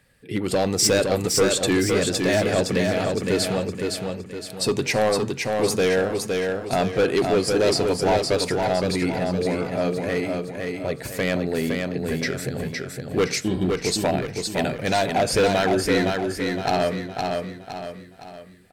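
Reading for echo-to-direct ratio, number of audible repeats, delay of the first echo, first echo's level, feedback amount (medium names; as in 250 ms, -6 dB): -3.0 dB, 5, 513 ms, -4.0 dB, 43%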